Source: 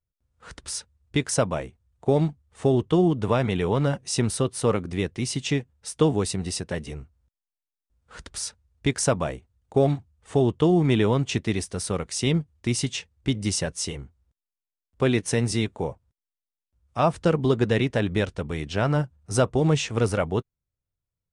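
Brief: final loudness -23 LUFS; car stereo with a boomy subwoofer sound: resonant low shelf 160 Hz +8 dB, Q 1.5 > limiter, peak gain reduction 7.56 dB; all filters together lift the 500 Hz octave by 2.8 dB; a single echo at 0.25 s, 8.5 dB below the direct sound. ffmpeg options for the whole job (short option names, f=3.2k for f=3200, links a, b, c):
-af "lowshelf=f=160:t=q:w=1.5:g=8,equalizer=f=500:t=o:g=4.5,aecho=1:1:250:0.376,alimiter=limit=-12dB:level=0:latency=1"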